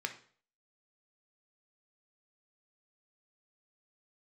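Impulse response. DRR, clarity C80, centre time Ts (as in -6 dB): 5.0 dB, 16.5 dB, 9 ms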